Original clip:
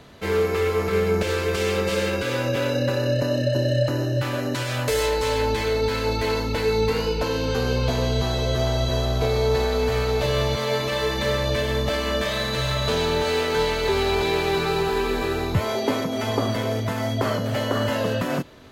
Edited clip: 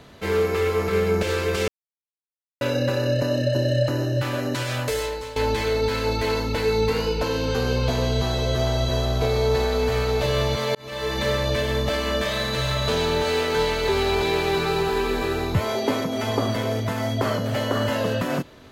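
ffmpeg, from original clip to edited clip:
-filter_complex "[0:a]asplit=5[a][b][c][d][e];[a]atrim=end=1.68,asetpts=PTS-STARTPTS,afade=t=out:st=1.676:d=0.004:c=hsin[f];[b]atrim=start=1.68:end=2.61,asetpts=PTS-STARTPTS,volume=0[g];[c]atrim=start=2.61:end=5.36,asetpts=PTS-STARTPTS,afade=t=in:d=0.004:c=hsin,afade=t=out:st=2.11:d=0.64:silence=0.158489[h];[d]atrim=start=5.36:end=10.75,asetpts=PTS-STARTPTS,afade=t=in:d=0.004:c=hsin:silence=0.158489,afade=t=out:st=5.386:d=0.004:c=hsin[i];[e]atrim=start=10.75,asetpts=PTS-STARTPTS,afade=t=in:d=0.43[j];[f][g][h][i][j]concat=n=5:v=0:a=1"

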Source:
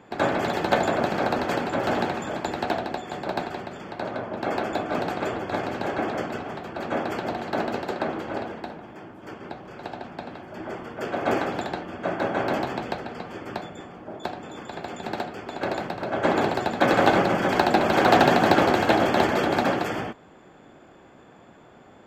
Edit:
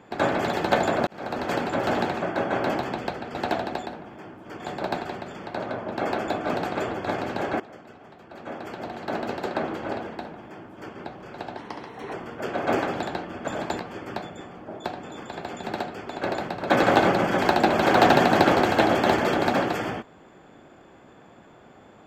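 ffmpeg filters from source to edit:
-filter_complex "[0:a]asplit=12[a][b][c][d][e][f][g][h][i][j][k][l];[a]atrim=end=1.07,asetpts=PTS-STARTPTS,afade=t=out:st=1.066:d=0.004:c=hsin[m];[b]atrim=start=1.07:end=2.222,asetpts=PTS-STARTPTS,afade=t=in:d=0.49[n];[c]atrim=start=12.058:end=13.192[o];[d]atrim=start=2.538:end=3.052[p];[e]atrim=start=8.628:end=9.372[q];[f]atrim=start=3.048:end=6.05,asetpts=PTS-STARTPTS,afade=t=out:st=2.998:d=0.004:c=hsin:silence=0.149624[r];[g]atrim=start=6.05:end=10.024,asetpts=PTS-STARTPTS,afade=t=in:d=1.88:c=qua:silence=0.149624[s];[h]atrim=start=10.02:end=10.72,asetpts=PTS-STARTPTS,asetrate=54684,aresample=44100,atrim=end_sample=24895,asetpts=PTS-STARTPTS[t];[i]atrim=start=10.716:end=12.062[u];[j]atrim=start=2.218:end=2.542[v];[k]atrim=start=13.188:end=16.072[w];[l]atrim=start=16.778[x];[m][n]concat=n=2:v=0:a=1[y];[y][o]acrossfade=d=0.004:c1=hsin:c2=hsin[z];[z][p]acrossfade=d=0.004:c1=hsin:c2=hsin[aa];[aa][q]acrossfade=d=0.004:c1=hsin:c2=hsin[ab];[r][s]concat=n=2:v=0:a=1[ac];[ab][ac]acrossfade=d=0.004:c1=hsin:c2=hsin[ad];[ad][t]acrossfade=d=0.004:c1=hsin:c2=hsin[ae];[ae][u]acrossfade=d=0.004:c1=hsin:c2=hsin[af];[af][v]acrossfade=d=0.004:c1=hsin:c2=hsin[ag];[ag][w]acrossfade=d=0.004:c1=hsin:c2=hsin[ah];[ah][x]acrossfade=d=0.004:c1=hsin:c2=hsin"

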